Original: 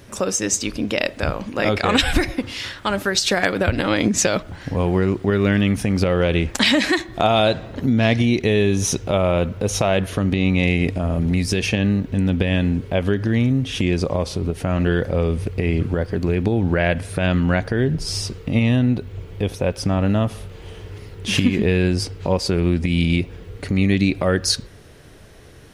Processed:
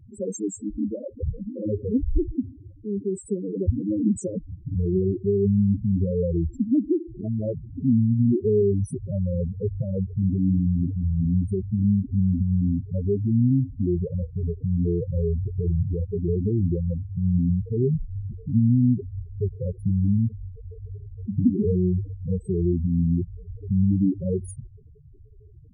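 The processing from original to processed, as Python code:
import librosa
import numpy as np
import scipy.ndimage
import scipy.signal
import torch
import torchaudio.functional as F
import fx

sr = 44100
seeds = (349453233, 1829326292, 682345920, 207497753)

y = scipy.signal.sosfilt(scipy.signal.cheby1(3, 1.0, [460.0, 8100.0], 'bandstop', fs=sr, output='sos'), x)
y = fx.spec_topn(y, sr, count=4)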